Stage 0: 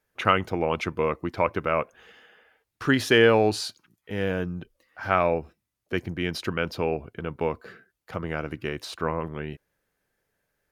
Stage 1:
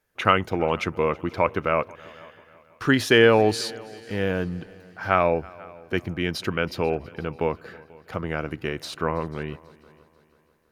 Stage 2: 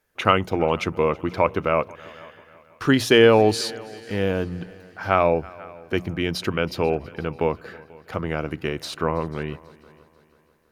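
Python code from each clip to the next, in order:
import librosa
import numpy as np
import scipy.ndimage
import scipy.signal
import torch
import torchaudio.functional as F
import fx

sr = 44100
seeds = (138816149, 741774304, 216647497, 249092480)

y1 = fx.echo_heads(x, sr, ms=163, heads='second and third', feedback_pct=42, wet_db=-24)
y1 = y1 * librosa.db_to_amplitude(2.0)
y2 = fx.hum_notches(y1, sr, base_hz=60, count=3)
y2 = fx.dynamic_eq(y2, sr, hz=1700.0, q=1.9, threshold_db=-37.0, ratio=4.0, max_db=-5)
y2 = y2 * librosa.db_to_amplitude(2.5)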